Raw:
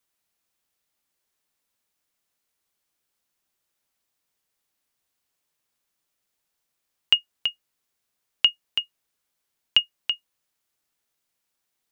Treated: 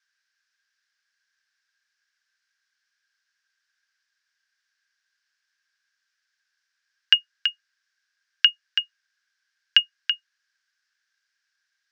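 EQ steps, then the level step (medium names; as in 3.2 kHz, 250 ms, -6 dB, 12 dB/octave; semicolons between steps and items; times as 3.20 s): resonant high-pass 1.6 kHz, resonance Q 16; resonant low-pass 5.3 kHz, resonance Q 3.4; -4.0 dB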